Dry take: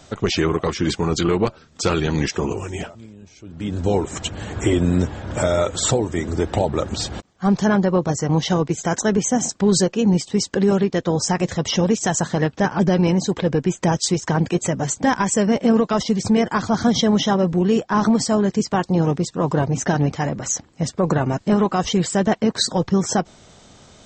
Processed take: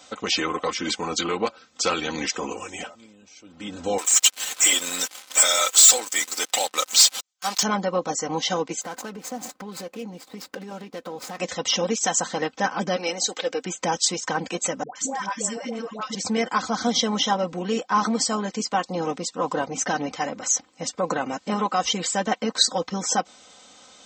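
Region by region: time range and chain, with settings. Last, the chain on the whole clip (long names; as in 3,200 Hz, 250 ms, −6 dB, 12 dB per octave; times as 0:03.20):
0:03.98–0:07.63: first difference + leveller curve on the samples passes 5
0:08.81–0:11.38: running median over 15 samples + downward compressor, threshold −24 dBFS
0:12.96–0:13.65: high-pass filter 370 Hz + high-shelf EQ 4,000 Hz +7 dB + notch filter 1,000 Hz, Q 5.8
0:14.83–0:16.15: downward compressor, threshold −16 dBFS + tuned comb filter 300 Hz, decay 0.47 s, mix 40% + all-pass dispersion highs, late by 126 ms, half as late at 760 Hz
whole clip: high-pass filter 870 Hz 6 dB per octave; notch filter 1,700 Hz, Q 8.9; comb filter 3.9 ms, depth 63%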